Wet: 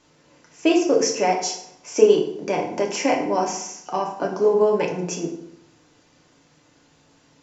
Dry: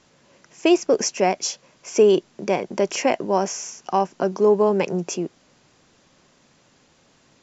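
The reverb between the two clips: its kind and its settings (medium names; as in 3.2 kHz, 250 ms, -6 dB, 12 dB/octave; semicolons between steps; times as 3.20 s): FDN reverb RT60 0.74 s, low-frequency decay 1.1×, high-frequency decay 0.7×, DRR -1 dB; trim -3.5 dB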